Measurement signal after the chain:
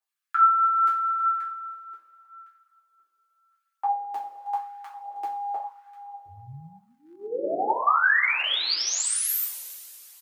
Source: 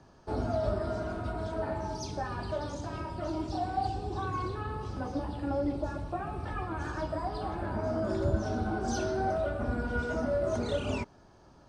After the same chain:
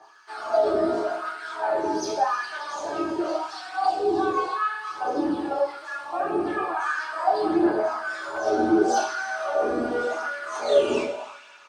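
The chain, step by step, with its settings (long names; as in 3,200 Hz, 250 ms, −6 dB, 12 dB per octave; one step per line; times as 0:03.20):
coupled-rooms reverb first 0.36 s, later 3.1 s, from −18 dB, DRR −6.5 dB
phase shifter 0.78 Hz, delay 2.2 ms, feedback 28%
on a send: single-tap delay 317 ms −18.5 dB
on the sum: hard clipping −11.5 dBFS
auto-filter high-pass sine 0.89 Hz 300–1,600 Hz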